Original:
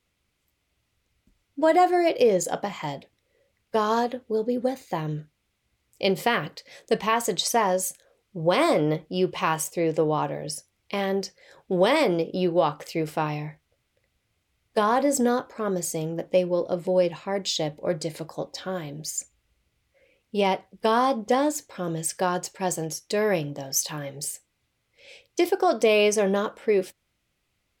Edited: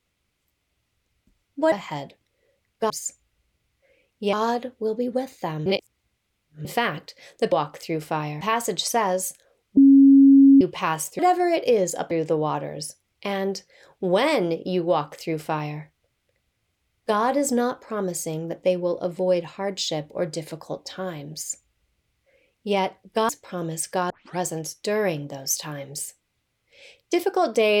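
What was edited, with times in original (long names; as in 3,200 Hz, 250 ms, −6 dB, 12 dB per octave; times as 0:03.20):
0:01.72–0:02.64: move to 0:09.79
0:05.15–0:06.14: reverse
0:08.37–0:09.21: beep over 274 Hz −8.5 dBFS
0:12.58–0:13.47: duplicate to 0:07.01
0:19.02–0:20.45: duplicate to 0:03.82
0:20.97–0:21.55: remove
0:22.36: tape start 0.29 s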